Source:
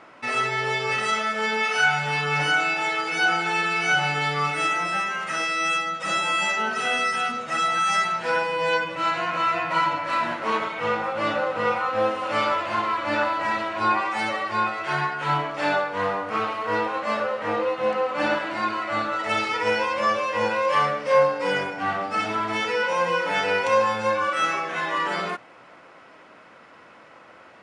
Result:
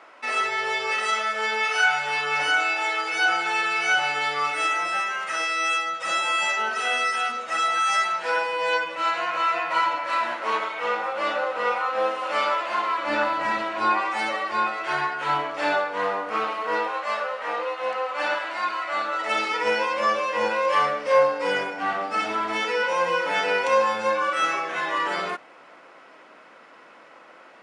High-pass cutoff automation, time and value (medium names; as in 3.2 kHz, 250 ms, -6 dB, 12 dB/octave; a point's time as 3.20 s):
12.92 s 440 Hz
13.35 s 110 Hz
13.95 s 280 Hz
16.63 s 280 Hz
17.05 s 640 Hz
18.86 s 640 Hz
19.52 s 250 Hz